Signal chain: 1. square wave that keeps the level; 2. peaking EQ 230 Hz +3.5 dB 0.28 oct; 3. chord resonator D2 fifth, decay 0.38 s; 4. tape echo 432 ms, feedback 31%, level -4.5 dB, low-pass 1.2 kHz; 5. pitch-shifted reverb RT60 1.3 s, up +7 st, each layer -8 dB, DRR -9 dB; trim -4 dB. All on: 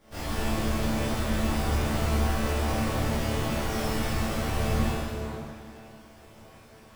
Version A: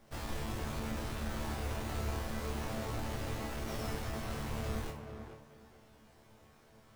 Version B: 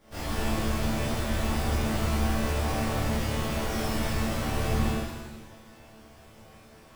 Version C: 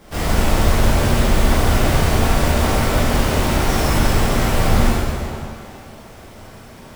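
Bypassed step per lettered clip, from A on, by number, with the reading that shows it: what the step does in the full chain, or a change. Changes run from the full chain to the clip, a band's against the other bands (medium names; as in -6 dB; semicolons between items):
5, loudness change -11.0 LU; 4, momentary loudness spread change -4 LU; 3, 250 Hz band -2.5 dB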